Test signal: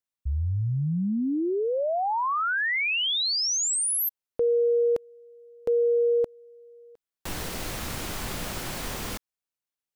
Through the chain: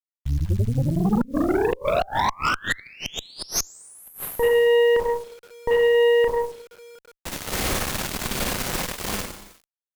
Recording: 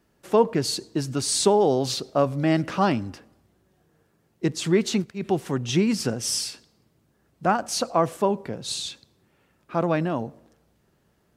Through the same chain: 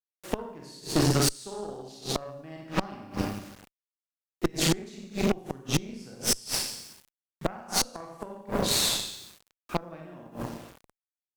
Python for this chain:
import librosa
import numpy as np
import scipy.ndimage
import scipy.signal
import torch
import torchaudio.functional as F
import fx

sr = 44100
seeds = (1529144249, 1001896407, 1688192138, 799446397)

y = fx.rev_schroeder(x, sr, rt60_s=0.95, comb_ms=30, drr_db=-3.0)
y = fx.quant_dither(y, sr, seeds[0], bits=8, dither='none')
y = fx.gate_flip(y, sr, shuts_db=-12.0, range_db=-25)
y = fx.cheby_harmonics(y, sr, harmonics=(8,), levels_db=(-15,), full_scale_db=-10.5)